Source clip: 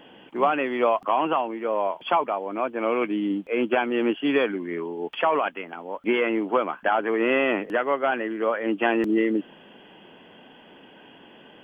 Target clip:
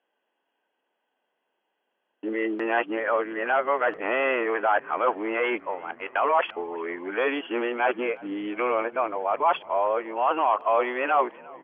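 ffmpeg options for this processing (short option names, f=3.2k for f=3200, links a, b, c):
-filter_complex "[0:a]areverse,asplit=2[a][b];[b]alimiter=limit=-18.5dB:level=0:latency=1:release=18,volume=3dB[c];[a][c]amix=inputs=2:normalize=0,agate=range=-29dB:threshold=-29dB:ratio=16:detection=peak,highpass=550,lowpass=2.2k,asplit=5[d][e][f][g][h];[e]adelay=353,afreqshift=-48,volume=-23dB[i];[f]adelay=706,afreqshift=-96,volume=-27.4dB[j];[g]adelay=1059,afreqshift=-144,volume=-31.9dB[k];[h]adelay=1412,afreqshift=-192,volume=-36.3dB[l];[d][i][j][k][l]amix=inputs=5:normalize=0,volume=-3dB"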